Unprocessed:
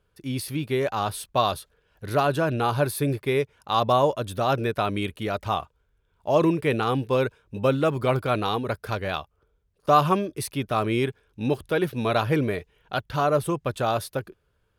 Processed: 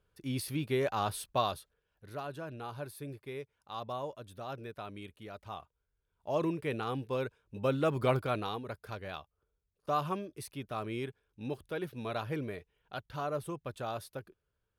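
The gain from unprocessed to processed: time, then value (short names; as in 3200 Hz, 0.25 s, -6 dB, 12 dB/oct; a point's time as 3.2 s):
1.26 s -6 dB
2.11 s -18.5 dB
5.4 s -18.5 dB
6.32 s -11.5 dB
7.41 s -11.5 dB
8.06 s -5 dB
8.64 s -13.5 dB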